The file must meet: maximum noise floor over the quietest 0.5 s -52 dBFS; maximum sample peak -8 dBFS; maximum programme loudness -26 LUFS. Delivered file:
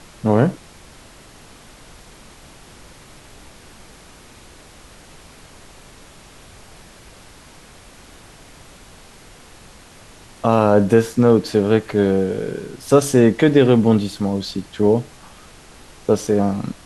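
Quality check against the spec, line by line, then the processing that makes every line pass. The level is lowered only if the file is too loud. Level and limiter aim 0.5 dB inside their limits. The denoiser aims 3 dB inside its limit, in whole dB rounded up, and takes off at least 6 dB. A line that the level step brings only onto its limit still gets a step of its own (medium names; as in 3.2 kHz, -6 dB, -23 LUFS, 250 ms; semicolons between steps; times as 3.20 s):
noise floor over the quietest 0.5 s -44 dBFS: fail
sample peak -2.0 dBFS: fail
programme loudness -17.5 LUFS: fail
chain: trim -9 dB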